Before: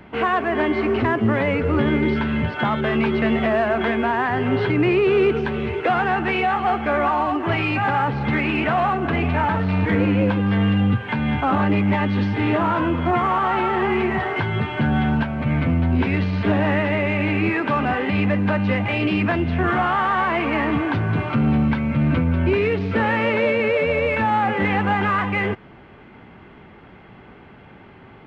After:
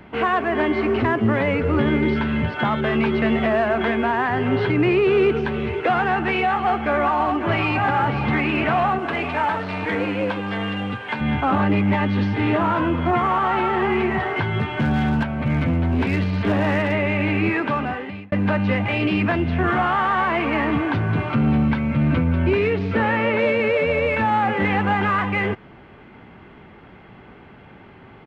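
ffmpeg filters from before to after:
-filter_complex "[0:a]asplit=2[s0][s1];[s1]afade=t=in:st=6.64:d=0.01,afade=t=out:st=7.73:d=0.01,aecho=0:1:550|1100|1650|2200|2750|3300|3850|4400|4950|5500:0.316228|0.221359|0.154952|0.108466|0.0759263|0.0531484|0.0372039|0.0260427|0.0182299|0.0127609[s2];[s0][s2]amix=inputs=2:normalize=0,asettb=1/sr,asplit=3[s3][s4][s5];[s3]atrim=end=8.994[s6];[s4]atrim=start=8.99:end=11.21,asetpts=PTS-STARTPTS,afade=t=in:d=0.004:c=qsin,afade=t=out:st=2.216:d=0.004:c=qsin,bass=f=250:g=-13,treble=f=4000:g=5[s7];[s5]atrim=start=11.206[s8];[s6][s7]acrossfade=d=0.004:c1=hsin:c2=qsin[s9];[s9][s8]acrossfade=d=0.004:c1=qsin:c2=hsin,asplit=3[s10][s11][s12];[s10]afade=t=out:st=14.57:d=0.02[s13];[s11]asoftclip=type=hard:threshold=0.178,afade=t=in:st=14.57:d=0.02,afade=t=out:st=16.92:d=0.02[s14];[s12]afade=t=in:st=16.92:d=0.02[s15];[s13][s14][s15]amix=inputs=3:normalize=0,asettb=1/sr,asplit=3[s16][s17][s18];[s16]atrim=end=22.704[s19];[s17]atrim=start=22.7:end=23.39,asetpts=PTS-STARTPTS,afade=t=in:d=0.004:c=qsin,afade=t=out:st=0.686:d=0.004:c=qsin,acrossover=split=3400[s20][s21];[s21]acompressor=threshold=0.00631:ratio=4:attack=1:release=60[s22];[s20][s22]amix=inputs=2:normalize=0[s23];[s18]atrim=start=23.386[s24];[s19][s23]acrossfade=d=0.004:c1=hsin:c2=qsin[s25];[s25][s24]acrossfade=d=0.004:c1=qsin:c2=hsin,asplit=2[s26][s27];[s26]atrim=end=18.32,asetpts=PTS-STARTPTS,afade=t=out:st=17.6:d=0.72[s28];[s27]atrim=start=18.32,asetpts=PTS-STARTPTS,afade=t=in:d=0.004:c=hsin[s29];[s28][s29]concat=n=2:v=0:a=1"

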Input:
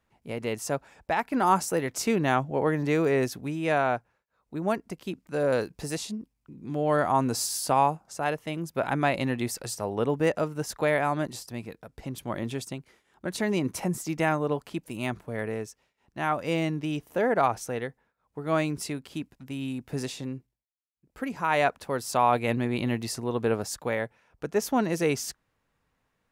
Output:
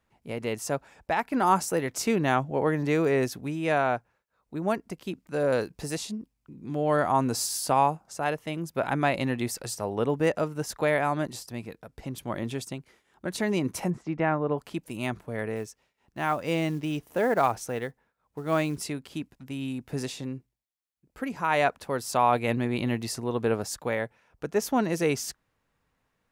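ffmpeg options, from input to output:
-filter_complex "[0:a]asettb=1/sr,asplit=3[s0][s1][s2];[s0]atrim=end=13.904[s3];[s1]atrim=start=13.9:end=14.58,asetpts=PTS-STARTPTS,afade=t=in:d=0.004:c=qsin,afade=t=out:st=0.676:d=0.004:c=qsin,lowpass=2000[s4];[s2]atrim=start=14.576[s5];[s3][s4]acrossfade=d=0.004:c1=hsin:c2=qsin[s6];[s6][s5]acrossfade=d=0.004:c1=qsin:c2=hsin,asettb=1/sr,asplit=3[s7][s8][s9];[s7]atrim=end=15.564[s10];[s8]atrim=start=15.56:end=18.79,asetpts=PTS-STARTPTS,afade=t=in:d=0.004:c=qsin,afade=t=out:st=3.226:d=0.004:c=qsin,acrusher=bits=7:mode=log:mix=0:aa=0.000001[s11];[s9]atrim=start=18.786[s12];[s10][s11]acrossfade=d=0.004:c1=hsin:c2=qsin[s13];[s13][s12]acrossfade=d=0.004:c1=qsin:c2=hsin"

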